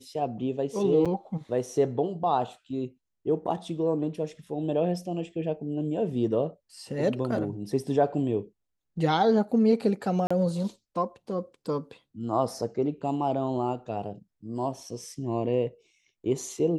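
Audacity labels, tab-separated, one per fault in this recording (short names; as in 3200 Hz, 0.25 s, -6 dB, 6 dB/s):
1.050000	1.060000	gap 6.5 ms
10.270000	10.300000	gap 35 ms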